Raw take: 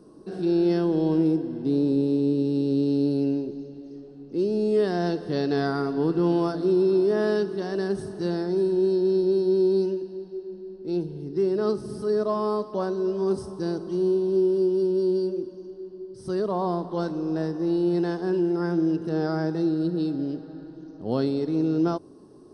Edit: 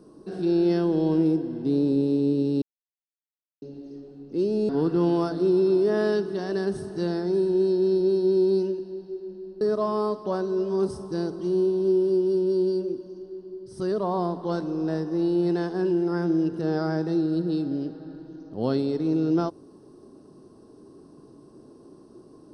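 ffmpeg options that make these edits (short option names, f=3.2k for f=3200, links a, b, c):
-filter_complex "[0:a]asplit=5[a][b][c][d][e];[a]atrim=end=2.62,asetpts=PTS-STARTPTS,afade=t=out:st=2.616:d=0.004:c=hsin[f];[b]atrim=start=2.62:end=3.62,asetpts=PTS-STARTPTS,volume=0[g];[c]atrim=start=3.62:end=4.692,asetpts=PTS-STARTPTS,afade=t=in:d=0.004:c=hsin[h];[d]atrim=start=5.918:end=10.842[i];[e]atrim=start=12.088[j];[f][g][h]concat=n=3:v=0:a=1[k];[k][i]acrossfade=d=0.004:c1=hsin:c2=hsin[l];[l][j]acrossfade=d=0.004:c1=hsin:c2=hsin"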